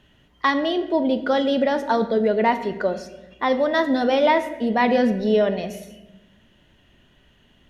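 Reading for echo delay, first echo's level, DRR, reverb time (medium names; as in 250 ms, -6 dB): no echo, no echo, 8.5 dB, 1.0 s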